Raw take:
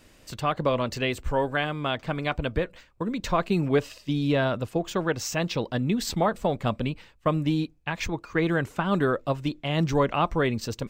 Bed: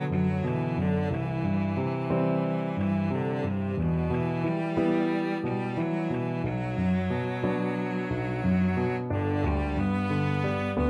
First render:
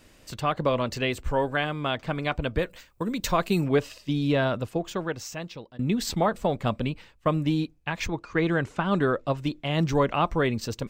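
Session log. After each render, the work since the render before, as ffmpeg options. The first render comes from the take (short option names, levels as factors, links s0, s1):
-filter_complex "[0:a]asettb=1/sr,asplit=3[s0][s1][s2];[s0]atrim=end=2.584[s3];[s1]atrim=start=2.58:end=3.64,asetpts=PTS-STARTPTS,afade=t=in:d=0.004:c=qsin,afade=t=out:st=1.056:d=0.004:c=qsin,aemphasis=mode=production:type=50kf[s4];[s2]atrim=start=3.636[s5];[s3][s4]acrossfade=d=0.004:c1=hsin:c2=qsin[s6];[s6][s5]acrossfade=d=0.004:c1=qsin:c2=hsin,asettb=1/sr,asplit=3[s7][s8][s9];[s7]atrim=end=8.074[s10];[s8]atrim=start=8.07:end=9.37,asetpts=PTS-STARTPTS,afade=t=in:d=0.004:c=qsin,afade=t=out:st=1.296:d=0.004:c=qsin,lowpass=7800[s11];[s9]atrim=start=9.366[s12];[s10][s11]acrossfade=d=0.004:c1=hsin:c2=qsin[s13];[s13][s12]acrossfade=d=0.004:c1=qsin:c2=hsin,asplit=2[s14][s15];[s14]atrim=end=5.79,asetpts=PTS-STARTPTS,afade=t=out:st=4.57:d=1.22:silence=0.0749894[s16];[s15]atrim=start=5.79,asetpts=PTS-STARTPTS,afade=t=in:d=0.004:c=hsin:silence=0.0749894[s17];[s16][s17]concat=n=2:v=0:a=1"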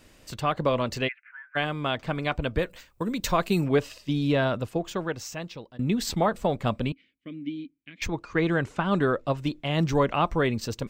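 -filter_complex "[0:a]asplit=3[s0][s1][s2];[s0]afade=t=out:st=1.07:d=0.02[s3];[s1]asuperpass=centerf=1900:order=8:qfactor=1.9,afade=t=in:st=1.07:d=0.02,afade=t=out:st=1.55:d=0.02[s4];[s2]afade=t=in:st=1.55:d=0.02[s5];[s3][s4][s5]amix=inputs=3:normalize=0,asettb=1/sr,asplit=3[s6][s7][s8];[s6]atrim=end=6.924[s9];[s7]atrim=start=6.92:end=8.02,asetpts=PTS-STARTPTS,afade=t=in:d=0.004:c=qsin,afade=t=out:st=1.096:d=0.004:c=qsin,asplit=3[s10][s11][s12];[s10]bandpass=f=270:t=q:w=8,volume=1[s13];[s11]bandpass=f=2290:t=q:w=8,volume=0.501[s14];[s12]bandpass=f=3010:t=q:w=8,volume=0.355[s15];[s13][s14][s15]amix=inputs=3:normalize=0[s16];[s8]atrim=start=8.016[s17];[s9][s16]acrossfade=d=0.004:c1=hsin:c2=qsin[s18];[s18][s17]acrossfade=d=0.004:c1=qsin:c2=hsin"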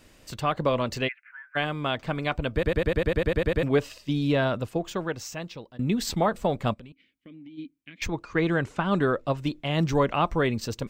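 -filter_complex "[0:a]asplit=3[s0][s1][s2];[s0]afade=t=out:st=6.73:d=0.02[s3];[s1]acompressor=threshold=0.00708:ratio=6:attack=3.2:release=140:knee=1:detection=peak,afade=t=in:st=6.73:d=0.02,afade=t=out:st=7.57:d=0.02[s4];[s2]afade=t=in:st=7.57:d=0.02[s5];[s3][s4][s5]amix=inputs=3:normalize=0,asplit=12[s6][s7][s8][s9][s10][s11][s12][s13][s14][s15][s16][s17];[s6]atrim=end=2.632[s18];[s7]atrim=start=2.528:end=2.632[s19];[s8]atrim=start=2.528:end=2.632[s20];[s9]atrim=start=2.528:end=2.632[s21];[s10]atrim=start=2.528:end=2.632[s22];[s11]atrim=start=2.528:end=2.632[s23];[s12]atrim=start=2.528:end=2.632[s24];[s13]atrim=start=2.528:end=2.632[s25];[s14]atrim=start=2.528:end=2.632[s26];[s15]atrim=start=2.528:end=2.632[s27];[s16]atrim=start=2.528:end=2.632[s28];[s17]atrim=start=3.628[s29];[s18][s19]acrossfade=d=0.004:c1=hsin:c2=hsin[s30];[s30][s20]acrossfade=d=0.004:c1=hsin:c2=hsin[s31];[s31][s21]acrossfade=d=0.004:c1=hsin:c2=hsin[s32];[s32][s22]acrossfade=d=0.004:c1=hsin:c2=hsin[s33];[s33][s23]acrossfade=d=0.004:c1=hsin:c2=hsin[s34];[s34][s24]acrossfade=d=0.004:c1=hsin:c2=hsin[s35];[s35][s25]acrossfade=d=0.004:c1=hsin:c2=hsin[s36];[s36][s26]acrossfade=d=0.004:c1=hsin:c2=hsin[s37];[s37][s27]acrossfade=d=0.004:c1=hsin:c2=hsin[s38];[s38][s28]acrossfade=d=0.004:c1=hsin:c2=hsin[s39];[s39][s29]acrossfade=d=0.004:c1=hsin:c2=hsin"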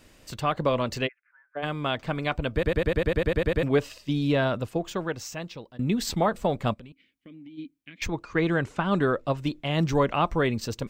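-filter_complex "[0:a]asplit=3[s0][s1][s2];[s0]afade=t=out:st=1.06:d=0.02[s3];[s1]bandpass=f=470:t=q:w=1.7,afade=t=in:st=1.06:d=0.02,afade=t=out:st=1.62:d=0.02[s4];[s2]afade=t=in:st=1.62:d=0.02[s5];[s3][s4][s5]amix=inputs=3:normalize=0"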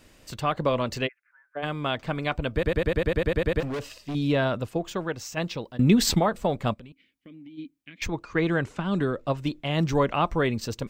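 -filter_complex "[0:a]asettb=1/sr,asplit=3[s0][s1][s2];[s0]atrim=end=3.604[s3];[s1]atrim=start=3.6:end=4.15,asetpts=PTS-STARTPTS,afade=t=in:d=0.004:c=qsin,afade=t=out:st=0.546:d=0.004:c=qsin,volume=26.6,asoftclip=hard,volume=0.0376[s4];[s2]atrim=start=4.146[s5];[s3][s4]acrossfade=d=0.004:c1=hsin:c2=qsin[s6];[s6][s5]acrossfade=d=0.004:c1=qsin:c2=hsin,asplit=3[s7][s8][s9];[s7]afade=t=out:st=5.36:d=0.02[s10];[s8]acontrast=89,afade=t=in:st=5.36:d=0.02,afade=t=out:st=6.18:d=0.02[s11];[s9]afade=t=in:st=6.18:d=0.02[s12];[s10][s11][s12]amix=inputs=3:normalize=0,asettb=1/sr,asplit=3[s13][s14][s15];[s13]atrim=end=8.734[s16];[s14]atrim=start=8.73:end=9.27,asetpts=PTS-STARTPTS,afade=t=in:d=0.004:c=qsin,afade=t=out:st=0.536:d=0.004:c=qsin,acrossover=split=400|3000[s17][s18][s19];[s18]acompressor=threshold=0.0282:ratio=6:attack=3.2:release=140:knee=2.83:detection=peak[s20];[s17][s20][s19]amix=inputs=3:normalize=0[s21];[s15]atrim=start=9.266[s22];[s16][s21]acrossfade=d=0.004:c1=hsin:c2=qsin[s23];[s23][s22]acrossfade=d=0.004:c1=qsin:c2=hsin"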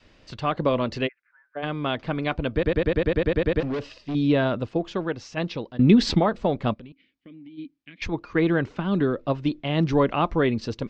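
-af "lowpass=f=5100:w=0.5412,lowpass=f=5100:w=1.3066,adynamicequalizer=threshold=0.0158:dfrequency=300:dqfactor=1.1:tfrequency=300:tqfactor=1.1:attack=5:release=100:ratio=0.375:range=2.5:mode=boostabove:tftype=bell"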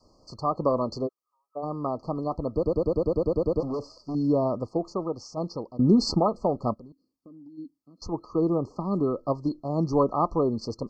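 -af "afftfilt=real='re*(1-between(b*sr/4096,1300,4200))':imag='im*(1-between(b*sr/4096,1300,4200))':win_size=4096:overlap=0.75,lowshelf=f=270:g=-6"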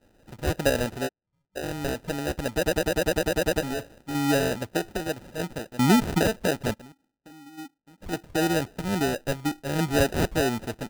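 -af "acrusher=samples=40:mix=1:aa=0.000001"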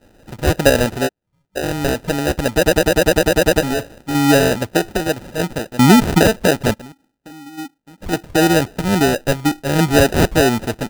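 -af "volume=3.35,alimiter=limit=0.794:level=0:latency=1"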